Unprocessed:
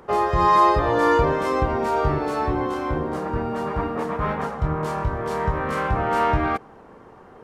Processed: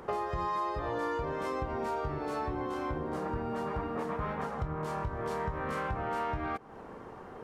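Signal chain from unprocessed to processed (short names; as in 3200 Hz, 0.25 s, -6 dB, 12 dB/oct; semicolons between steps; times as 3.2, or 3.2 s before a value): compressor 6:1, threshold -32 dBFS, peak gain reduction 18 dB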